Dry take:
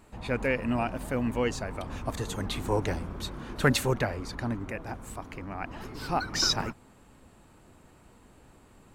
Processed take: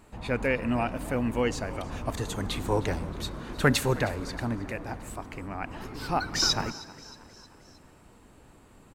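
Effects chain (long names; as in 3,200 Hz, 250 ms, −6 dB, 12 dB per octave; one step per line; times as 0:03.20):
on a send: echo with shifted repeats 313 ms, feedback 55%, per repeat +56 Hz, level −19.5 dB
on the sum: feedback delay network reverb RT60 2.4 s, high-frequency decay 0.95×, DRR 19 dB
level +1 dB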